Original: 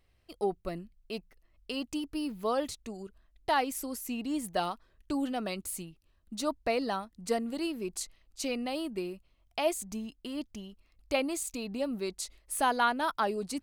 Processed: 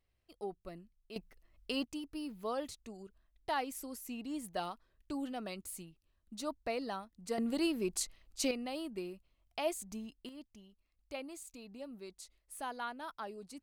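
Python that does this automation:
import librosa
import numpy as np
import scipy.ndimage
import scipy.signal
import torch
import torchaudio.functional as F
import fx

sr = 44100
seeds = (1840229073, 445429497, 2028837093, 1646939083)

y = fx.gain(x, sr, db=fx.steps((0.0, -11.0), (1.16, -0.5), (1.84, -7.5), (7.38, 1.0), (8.51, -6.0), (10.29, -14.0)))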